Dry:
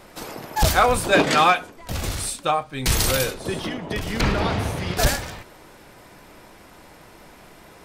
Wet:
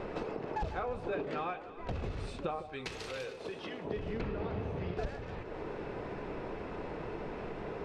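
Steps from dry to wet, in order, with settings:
head-to-tape spacing loss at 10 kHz 35 dB
hollow resonant body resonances 430/2,600 Hz, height 9 dB, ringing for 30 ms
downward compressor 8 to 1, threshold −43 dBFS, peak gain reduction 29.5 dB
0:02.59–0:03.85: spectral tilt +3.5 dB per octave
delay that swaps between a low-pass and a high-pass 154 ms, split 920 Hz, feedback 63%, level −11 dB
level +7.5 dB

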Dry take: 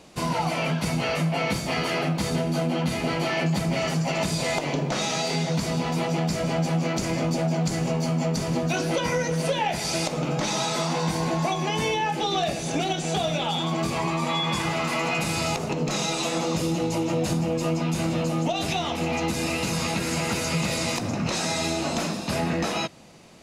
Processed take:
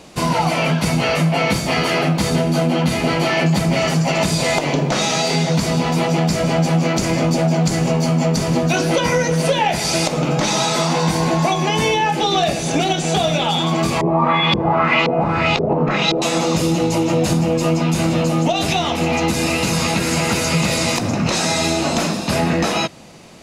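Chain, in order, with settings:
0:14.01–0:16.22: auto-filter low-pass saw up 1.9 Hz 410–4,100 Hz
level +8 dB

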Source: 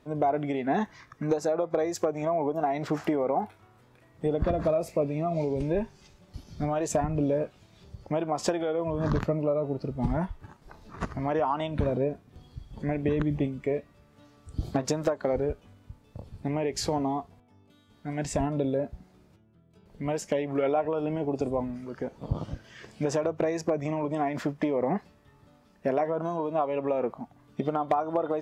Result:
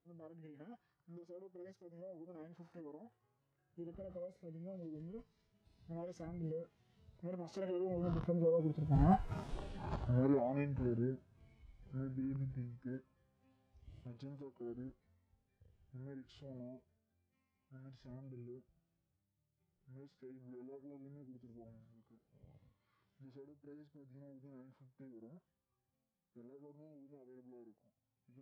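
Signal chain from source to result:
source passing by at 0:09.46, 37 m/s, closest 4.1 metres
harmonic and percussive parts rebalanced percussive −15 dB
formants moved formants −5 semitones
level +14.5 dB

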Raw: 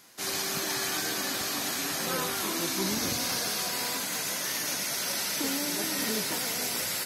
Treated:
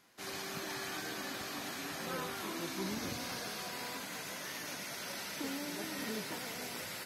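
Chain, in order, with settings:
bass and treble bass +1 dB, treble −8 dB
level −7.5 dB

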